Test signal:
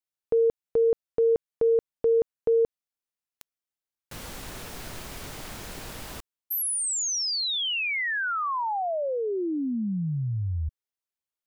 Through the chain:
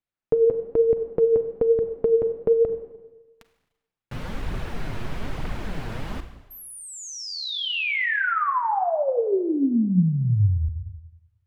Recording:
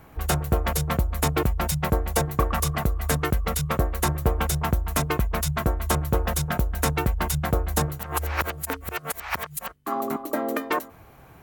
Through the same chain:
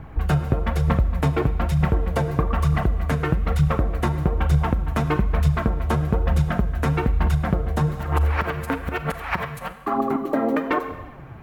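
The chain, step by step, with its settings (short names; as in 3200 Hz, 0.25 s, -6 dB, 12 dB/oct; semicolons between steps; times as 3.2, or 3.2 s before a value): tone controls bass +7 dB, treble -15 dB; Schroeder reverb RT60 1.1 s, combs from 33 ms, DRR 9.5 dB; compressor 4:1, threshold -22 dBFS; high shelf 12000 Hz -7 dB; flange 1.1 Hz, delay 0 ms, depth 9.2 ms, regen +41%; gain +8.5 dB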